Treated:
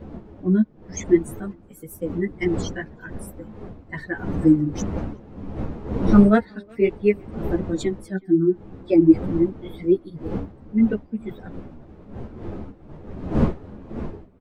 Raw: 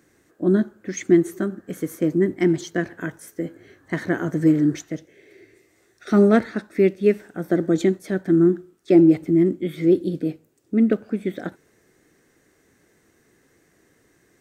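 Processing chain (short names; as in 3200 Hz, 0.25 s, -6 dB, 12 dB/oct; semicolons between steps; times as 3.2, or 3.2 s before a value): per-bin expansion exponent 2; wind noise 280 Hz -34 dBFS; speakerphone echo 0.37 s, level -27 dB; ensemble effect; gain +6 dB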